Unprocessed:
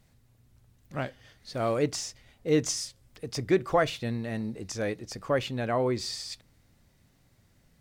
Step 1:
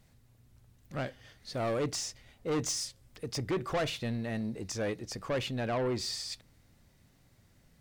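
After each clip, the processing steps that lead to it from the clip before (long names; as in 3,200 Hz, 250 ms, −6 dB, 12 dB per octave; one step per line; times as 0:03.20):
soft clipping −27 dBFS, distortion −8 dB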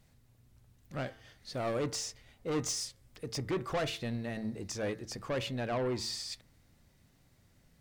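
hum removal 111.7 Hz, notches 20
level −1.5 dB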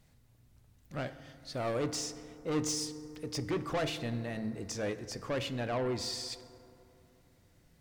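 feedback delay network reverb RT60 3 s, high-frequency decay 0.35×, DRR 12 dB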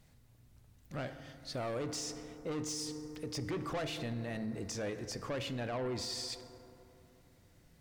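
brickwall limiter −32.5 dBFS, peak gain reduction 9.5 dB
level +1 dB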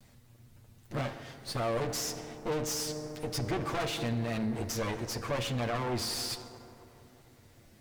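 lower of the sound and its delayed copy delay 8.7 ms
level +7 dB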